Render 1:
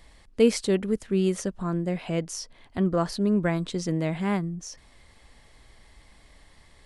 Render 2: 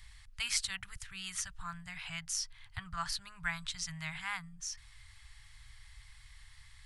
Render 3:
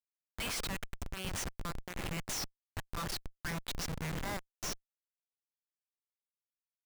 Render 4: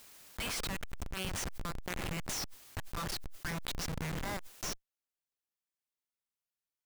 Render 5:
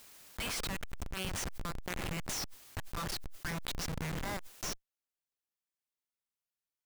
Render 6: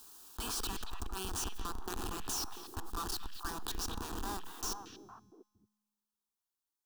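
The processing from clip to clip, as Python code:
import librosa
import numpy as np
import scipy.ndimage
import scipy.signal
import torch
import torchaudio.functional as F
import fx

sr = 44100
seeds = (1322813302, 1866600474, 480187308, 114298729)

y1 = scipy.signal.sosfilt(scipy.signal.ellip(3, 1.0, 40, [120.0, 880.0], 'bandstop', fs=sr, output='sos'), x)
y1 = fx.band_shelf(y1, sr, hz=650.0, db=-9.5, octaves=1.7)
y2 = fx.schmitt(y1, sr, flips_db=-40.5)
y2 = y2 * 10.0 ** (5.5 / 20.0)
y3 = fx.pre_swell(y2, sr, db_per_s=27.0)
y4 = y3
y5 = fx.fixed_phaser(y4, sr, hz=570.0, stages=6)
y5 = fx.comb_fb(y5, sr, f0_hz=210.0, decay_s=1.4, harmonics='all', damping=0.0, mix_pct=50)
y5 = fx.echo_stepped(y5, sr, ms=230, hz=2600.0, octaves=-1.4, feedback_pct=70, wet_db=-2.5)
y5 = y5 * 10.0 ** (8.0 / 20.0)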